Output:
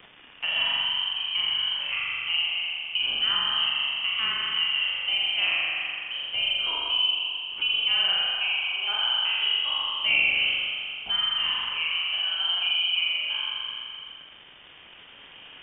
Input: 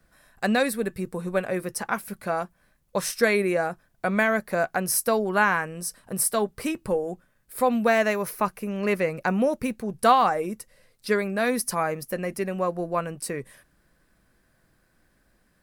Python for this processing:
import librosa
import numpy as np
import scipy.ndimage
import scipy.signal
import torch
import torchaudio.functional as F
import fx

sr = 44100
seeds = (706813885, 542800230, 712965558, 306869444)

y = fx.spec_trails(x, sr, decay_s=1.36)
y = fx.recorder_agc(y, sr, target_db=-10.5, rise_db_per_s=6.9, max_gain_db=30)
y = scipy.signal.sosfilt(scipy.signal.cheby2(4, 40, 170.0, 'highpass', fs=sr, output='sos'), y)
y = fx.peak_eq(y, sr, hz=1600.0, db=-14.5, octaves=0.52)
y = fx.room_flutter(y, sr, wall_m=7.3, rt60_s=1.4)
y = fx.dmg_crackle(y, sr, seeds[0], per_s=530.0, level_db=-37.0)
y = fx.freq_invert(y, sr, carrier_hz=3500)
y = fx.band_squash(y, sr, depth_pct=40)
y = y * 10.0 ** (-7.0 / 20.0)